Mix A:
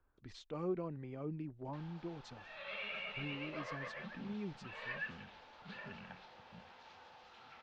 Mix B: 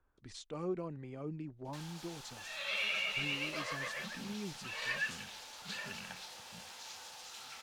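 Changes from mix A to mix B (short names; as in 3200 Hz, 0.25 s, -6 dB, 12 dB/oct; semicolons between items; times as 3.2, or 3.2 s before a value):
background: remove tape spacing loss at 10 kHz 26 dB; master: remove air absorption 160 m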